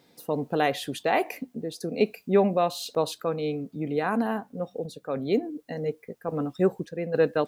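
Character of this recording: a quantiser's noise floor 12-bit, dither triangular; random-step tremolo

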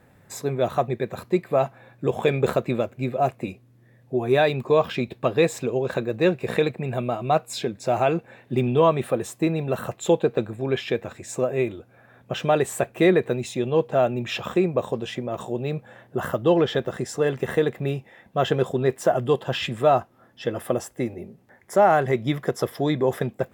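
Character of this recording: noise floor -56 dBFS; spectral tilt -5.5 dB/octave

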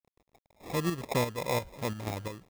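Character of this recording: a quantiser's noise floor 10-bit, dither none; chopped level 2.9 Hz, depth 60%, duty 60%; aliases and images of a low sample rate 1.5 kHz, jitter 0%

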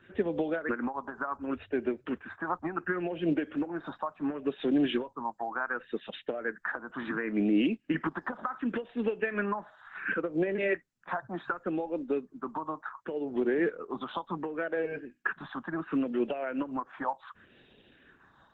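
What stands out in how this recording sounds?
tremolo triangle 6.1 Hz, depth 30%; phasing stages 4, 0.69 Hz, lowest notch 420–1200 Hz; Opus

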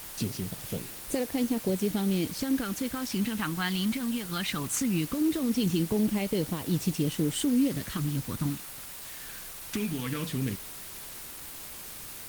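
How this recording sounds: phasing stages 2, 0.19 Hz, lowest notch 490–1300 Hz; a quantiser's noise floor 8-bit, dither triangular; Opus

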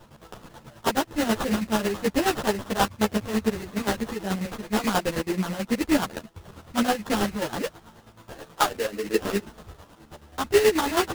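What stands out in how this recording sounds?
chopped level 9.3 Hz, depth 60%, duty 40%; aliases and images of a low sample rate 2.3 kHz, jitter 20%; a shimmering, thickened sound

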